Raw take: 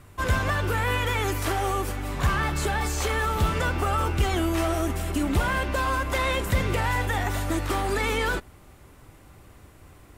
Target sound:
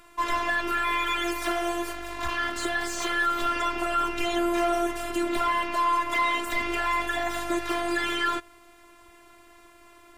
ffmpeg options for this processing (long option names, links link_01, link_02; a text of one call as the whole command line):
ffmpeg -i in.wav -filter_complex "[0:a]asettb=1/sr,asplit=3[link_01][link_02][link_03];[link_01]atrim=end=1.934[link_04];[link_02]atrim=start=1.93:end=2.56,asetpts=PTS-STARTPTS,afade=type=in:duration=0.004:curve=qsin,afade=type=out:start_time=0.626:duration=0.004:curve=qsin,aeval=exprs='clip(val(0),-1,0.02)':channel_layout=same[link_05];[link_03]atrim=start=2.556[link_06];[link_04][link_05]acrossfade=duration=0.004:curve1=hsin:curve2=qsin[link_07];[link_07][link_06]acrossfade=duration=0.004:curve1=qsin:curve2=hsin,afftfilt=real='hypot(re,im)*cos(PI*b)':imag='0':win_size=512:overlap=0.75,asplit=2[link_08][link_09];[link_09]highpass=frequency=720:poles=1,volume=12dB,asoftclip=type=tanh:threshold=-11.5dB[link_10];[link_08][link_10]amix=inputs=2:normalize=0,lowpass=frequency=4900:poles=1,volume=-6dB" out.wav